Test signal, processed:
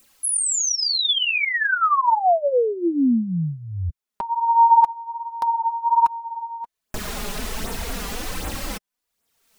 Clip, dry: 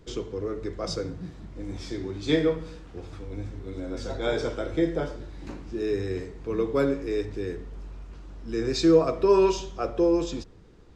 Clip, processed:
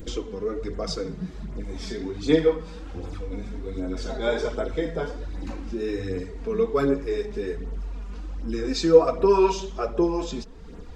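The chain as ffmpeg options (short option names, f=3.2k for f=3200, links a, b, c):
-filter_complex "[0:a]flanger=delay=0.1:depth=5:regen=13:speed=1.3:shape=sinusoidal,adynamicequalizer=threshold=0.02:dfrequency=900:dqfactor=1.5:tfrequency=900:tqfactor=1.5:attack=5:release=100:ratio=0.375:range=2:mode=boostabove:tftype=bell,asplit=2[a][b];[b]acompressor=mode=upward:threshold=-26dB:ratio=2.5,volume=-0.5dB[c];[a][c]amix=inputs=2:normalize=0,flanger=delay=3.7:depth=1.2:regen=-23:speed=0.35:shape=triangular,volume=1.5dB"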